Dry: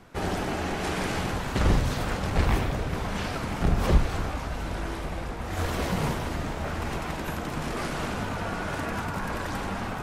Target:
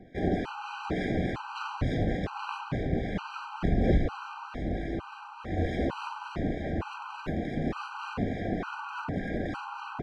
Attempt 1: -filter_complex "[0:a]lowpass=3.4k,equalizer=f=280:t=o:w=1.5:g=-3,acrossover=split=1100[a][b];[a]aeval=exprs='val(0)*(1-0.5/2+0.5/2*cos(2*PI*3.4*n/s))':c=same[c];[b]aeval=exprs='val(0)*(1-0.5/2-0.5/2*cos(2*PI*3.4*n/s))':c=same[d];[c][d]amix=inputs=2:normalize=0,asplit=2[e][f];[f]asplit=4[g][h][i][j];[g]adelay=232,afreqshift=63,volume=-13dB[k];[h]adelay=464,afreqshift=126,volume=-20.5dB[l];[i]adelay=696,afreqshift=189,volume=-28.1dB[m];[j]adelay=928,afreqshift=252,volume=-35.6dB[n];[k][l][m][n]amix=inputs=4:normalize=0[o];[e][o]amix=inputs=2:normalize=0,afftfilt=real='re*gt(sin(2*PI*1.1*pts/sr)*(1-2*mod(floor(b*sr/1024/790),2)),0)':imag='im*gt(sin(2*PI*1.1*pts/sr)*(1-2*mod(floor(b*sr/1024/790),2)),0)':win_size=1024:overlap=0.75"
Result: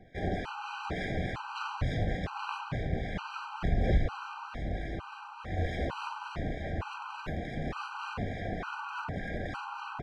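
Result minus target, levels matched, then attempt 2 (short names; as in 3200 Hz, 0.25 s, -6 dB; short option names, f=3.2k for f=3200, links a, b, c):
250 Hz band -4.0 dB
-filter_complex "[0:a]lowpass=3.4k,equalizer=f=280:t=o:w=1.5:g=6.5,acrossover=split=1100[a][b];[a]aeval=exprs='val(0)*(1-0.5/2+0.5/2*cos(2*PI*3.4*n/s))':c=same[c];[b]aeval=exprs='val(0)*(1-0.5/2-0.5/2*cos(2*PI*3.4*n/s))':c=same[d];[c][d]amix=inputs=2:normalize=0,asplit=2[e][f];[f]asplit=4[g][h][i][j];[g]adelay=232,afreqshift=63,volume=-13dB[k];[h]adelay=464,afreqshift=126,volume=-20.5dB[l];[i]adelay=696,afreqshift=189,volume=-28.1dB[m];[j]adelay=928,afreqshift=252,volume=-35.6dB[n];[k][l][m][n]amix=inputs=4:normalize=0[o];[e][o]amix=inputs=2:normalize=0,afftfilt=real='re*gt(sin(2*PI*1.1*pts/sr)*(1-2*mod(floor(b*sr/1024/790),2)),0)':imag='im*gt(sin(2*PI*1.1*pts/sr)*(1-2*mod(floor(b*sr/1024/790),2)),0)':win_size=1024:overlap=0.75"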